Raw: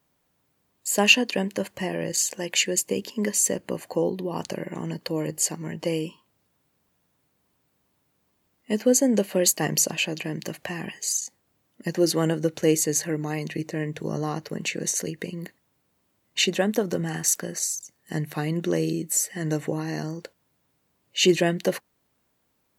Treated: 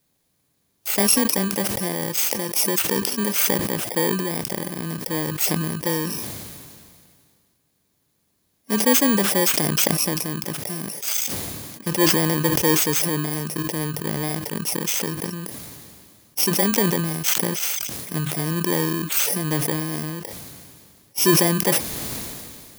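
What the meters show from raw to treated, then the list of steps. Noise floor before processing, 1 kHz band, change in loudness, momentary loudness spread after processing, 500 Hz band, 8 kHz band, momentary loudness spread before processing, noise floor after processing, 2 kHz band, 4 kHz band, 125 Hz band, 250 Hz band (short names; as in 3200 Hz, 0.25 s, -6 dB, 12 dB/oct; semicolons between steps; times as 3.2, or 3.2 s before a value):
-72 dBFS, +6.0 dB, +4.0 dB, 13 LU, +0.5 dB, +2.0 dB, 12 LU, -69 dBFS, +1.5 dB, +2.5 dB, +4.5 dB, +3.0 dB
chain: FFT order left unsorted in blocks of 32 samples; maximiser +9 dB; sustainer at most 28 dB/s; gain -7 dB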